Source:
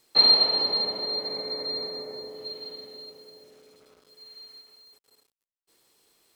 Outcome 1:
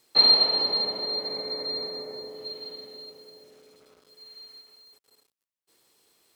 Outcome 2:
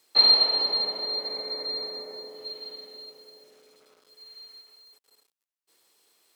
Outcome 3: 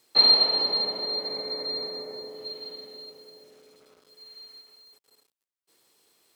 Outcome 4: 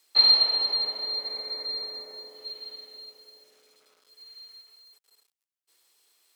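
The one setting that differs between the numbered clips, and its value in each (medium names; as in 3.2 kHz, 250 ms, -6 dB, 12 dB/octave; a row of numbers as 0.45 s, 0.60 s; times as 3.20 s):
high-pass, cutoff frequency: 46 Hz, 450 Hz, 120 Hz, 1.4 kHz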